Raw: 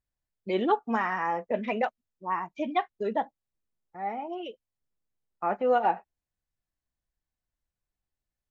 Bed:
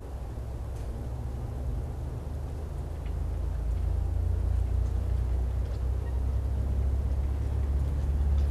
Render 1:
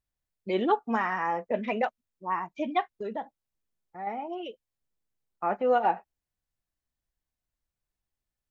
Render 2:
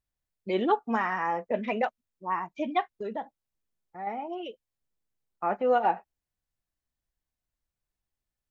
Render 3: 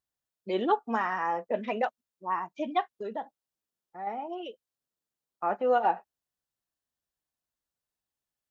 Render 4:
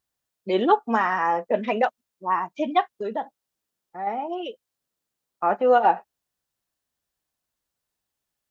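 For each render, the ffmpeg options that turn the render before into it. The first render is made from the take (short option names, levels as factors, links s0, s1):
-filter_complex "[0:a]asettb=1/sr,asplit=3[s0][s1][s2];[s0]atrim=end=2.974[s3];[s1]atrim=start=2.97:end=4.07,asetpts=PTS-STARTPTS,afade=t=in:d=0.004:c=qsin,afade=t=out:st=1.096:d=0.004:c=qsin,acompressor=threshold=0.02:ratio=2:attack=3.2:release=140:knee=1:detection=peak[s4];[s2]atrim=start=4.066[s5];[s3][s4]acrossfade=d=0.004:c1=hsin:c2=qsin[s6];[s6][s5]acrossfade=d=0.004:c1=qsin:c2=hsin"
-af anull
-af "highpass=f=250:p=1,equalizer=f=2200:t=o:w=0.37:g=-6"
-af "volume=2.24"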